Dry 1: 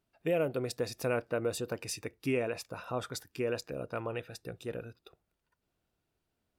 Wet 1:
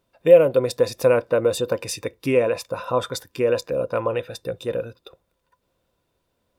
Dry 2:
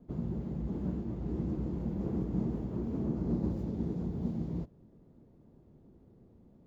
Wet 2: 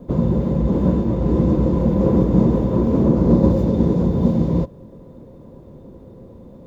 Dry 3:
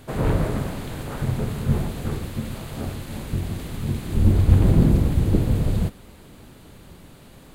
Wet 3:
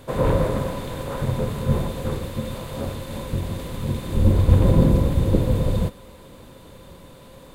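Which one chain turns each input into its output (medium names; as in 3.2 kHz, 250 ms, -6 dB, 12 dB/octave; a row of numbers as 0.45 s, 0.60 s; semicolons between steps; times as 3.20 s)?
small resonant body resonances 530/1000/3600 Hz, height 13 dB, ringing for 55 ms; peak normalisation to -2 dBFS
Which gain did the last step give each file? +8.5 dB, +17.5 dB, 0.0 dB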